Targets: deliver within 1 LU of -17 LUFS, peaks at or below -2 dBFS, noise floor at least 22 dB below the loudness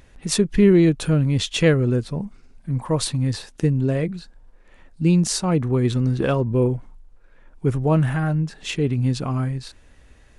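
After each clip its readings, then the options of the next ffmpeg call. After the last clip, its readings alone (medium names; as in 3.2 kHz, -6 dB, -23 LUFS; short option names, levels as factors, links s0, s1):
loudness -21.0 LUFS; peak level -5.0 dBFS; loudness target -17.0 LUFS
-> -af "volume=1.58,alimiter=limit=0.794:level=0:latency=1"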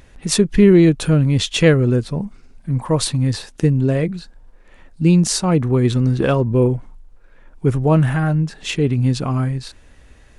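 loudness -17.0 LUFS; peak level -2.0 dBFS; noise floor -48 dBFS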